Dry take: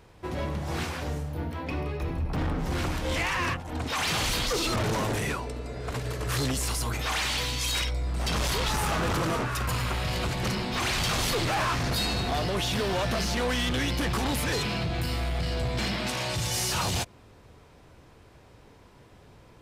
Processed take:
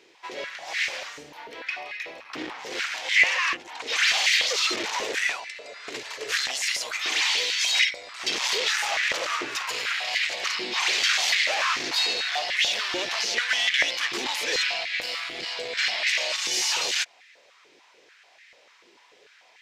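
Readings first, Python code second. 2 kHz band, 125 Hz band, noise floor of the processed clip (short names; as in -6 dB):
+8.5 dB, under -30 dB, -57 dBFS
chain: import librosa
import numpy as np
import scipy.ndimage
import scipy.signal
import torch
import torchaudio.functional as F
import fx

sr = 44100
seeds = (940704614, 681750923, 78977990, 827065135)

y = fx.band_shelf(x, sr, hz=3600.0, db=14.0, octaves=2.3)
y = fx.filter_held_highpass(y, sr, hz=6.8, low_hz=350.0, high_hz=1900.0)
y = F.gain(torch.from_numpy(y), -8.0).numpy()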